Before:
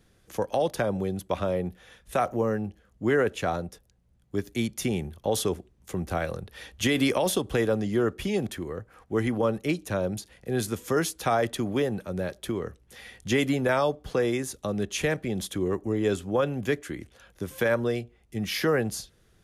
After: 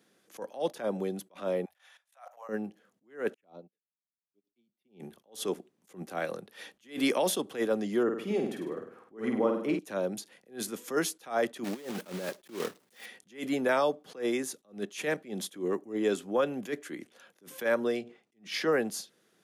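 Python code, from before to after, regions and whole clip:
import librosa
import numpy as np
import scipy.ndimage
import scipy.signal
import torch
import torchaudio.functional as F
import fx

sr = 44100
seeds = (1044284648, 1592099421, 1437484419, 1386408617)

y = fx.chain(x, sr, fx.cheby2_bandstop(low_hz=110.0, high_hz=400.0, order=4, stop_db=40),
    fx.level_steps(step_db=14), at=(1.65, 2.49))
y = fx.chain(y, sr, fx.peak_eq(hz=8500.0, db=-12.0, octaves=1.6),
    fx.env_phaser(low_hz=540.0, high_hz=1700.0, full_db=-27.0),
    fx.upward_expand(threshold_db=-47.0, expansion=2.5), at=(3.34, 5.0))
y = fx.chain(y, sr, fx.high_shelf(hz=2300.0, db=-11.5),
    fx.room_flutter(wall_m=8.6, rt60_s=0.59), at=(8.03, 9.79))
y = fx.chain(y, sr, fx.block_float(bits=3),
    fx.over_compress(threshold_db=-31.0, ratio=-0.5), at=(11.64, 13.06))
y = fx.chain(y, sr, fx.lowpass(hz=7300.0, slope=12),
    fx.sustainer(db_per_s=140.0), at=(17.97, 18.72))
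y = scipy.signal.sosfilt(scipy.signal.butter(4, 200.0, 'highpass', fs=sr, output='sos'), y)
y = fx.attack_slew(y, sr, db_per_s=200.0)
y = y * 10.0 ** (-2.0 / 20.0)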